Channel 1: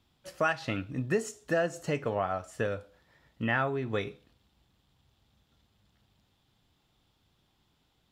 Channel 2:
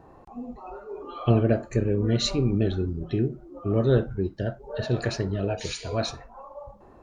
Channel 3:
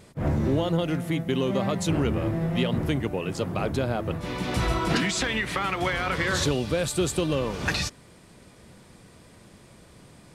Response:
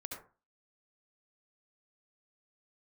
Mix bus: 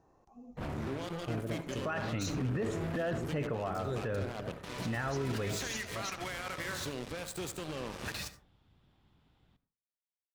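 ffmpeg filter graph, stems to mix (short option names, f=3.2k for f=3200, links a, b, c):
-filter_complex "[0:a]bass=f=250:g=5,treble=f=4k:g=-13,adelay=1450,volume=-0.5dB,asplit=2[a][b];[b]volume=-9.5dB[c];[1:a]equalizer=f=6.1k:t=o:w=0.6:g=15,volume=-17.5dB,asplit=2[d][e];[e]volume=-10dB[f];[2:a]lowshelf=f=440:g=-3,alimiter=limit=-20.5dB:level=0:latency=1:release=209,acrusher=bits=4:mix=0:aa=0.5,adelay=400,volume=-11.5dB,asplit=2[g][h];[h]volume=-4dB[i];[3:a]atrim=start_sample=2205[j];[c][f][i]amix=inputs=3:normalize=0[k];[k][j]afir=irnorm=-1:irlink=0[l];[a][d][g][l]amix=inputs=4:normalize=0,alimiter=level_in=2.5dB:limit=-24dB:level=0:latency=1:release=15,volume=-2.5dB"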